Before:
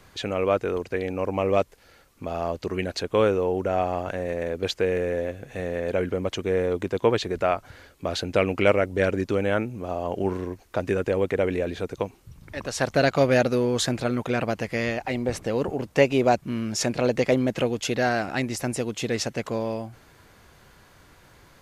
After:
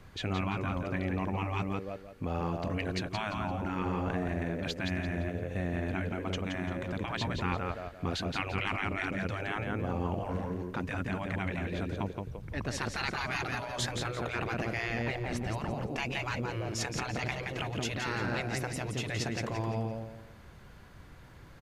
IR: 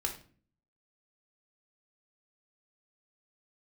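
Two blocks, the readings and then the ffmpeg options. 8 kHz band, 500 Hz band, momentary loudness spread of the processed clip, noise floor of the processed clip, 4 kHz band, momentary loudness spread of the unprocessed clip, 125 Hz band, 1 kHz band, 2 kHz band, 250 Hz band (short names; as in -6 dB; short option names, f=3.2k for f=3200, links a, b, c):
-8.0 dB, -14.5 dB, 5 LU, -52 dBFS, -5.5 dB, 9 LU, -3.0 dB, -6.5 dB, -4.5 dB, -7.5 dB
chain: -af "aecho=1:1:171|342|513|684:0.473|0.151|0.0485|0.0155,afftfilt=real='re*lt(hypot(re,im),0.2)':imag='im*lt(hypot(re,im),0.2)':win_size=1024:overlap=0.75,bass=f=250:g=7,treble=f=4k:g=-6,volume=-3.5dB"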